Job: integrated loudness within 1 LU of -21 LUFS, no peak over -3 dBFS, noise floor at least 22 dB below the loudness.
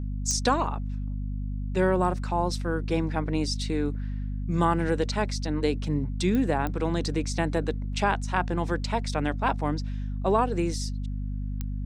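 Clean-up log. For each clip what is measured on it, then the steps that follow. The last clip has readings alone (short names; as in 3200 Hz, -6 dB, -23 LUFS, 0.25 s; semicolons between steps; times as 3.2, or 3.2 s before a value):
clicks 4; hum 50 Hz; harmonics up to 250 Hz; hum level -28 dBFS; loudness -28.0 LUFS; peak -10.0 dBFS; loudness target -21.0 LUFS
-> de-click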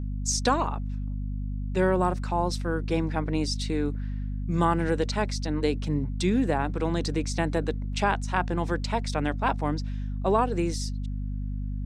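clicks 0; hum 50 Hz; harmonics up to 250 Hz; hum level -28 dBFS
-> notches 50/100/150/200/250 Hz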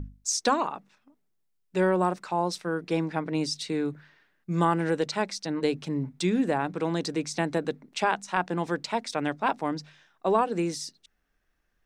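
hum none; loudness -28.5 LUFS; peak -11.5 dBFS; loudness target -21.0 LUFS
-> gain +7.5 dB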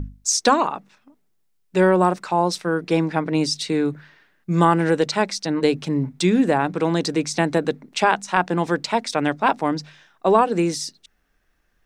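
loudness -21.0 LUFS; peak -4.0 dBFS; noise floor -66 dBFS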